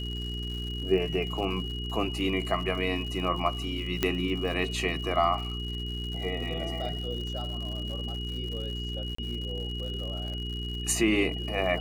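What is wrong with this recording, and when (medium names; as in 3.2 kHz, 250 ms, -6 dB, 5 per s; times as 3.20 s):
crackle 140 per s -37 dBFS
hum 60 Hz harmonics 7 -35 dBFS
whine 2.9 kHz -37 dBFS
4.03 s: pop -10 dBFS
9.15–9.18 s: dropout 34 ms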